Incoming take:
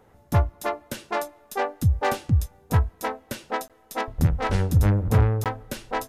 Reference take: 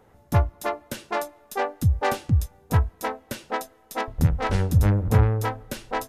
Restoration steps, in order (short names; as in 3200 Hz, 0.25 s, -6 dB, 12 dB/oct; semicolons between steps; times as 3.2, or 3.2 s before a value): clip repair -11 dBFS; interpolate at 3.68/5.44, 17 ms